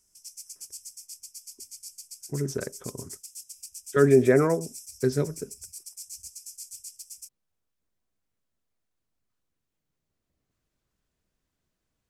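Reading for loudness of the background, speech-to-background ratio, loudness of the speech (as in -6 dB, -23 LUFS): -41.5 LUFS, 17.5 dB, -24.0 LUFS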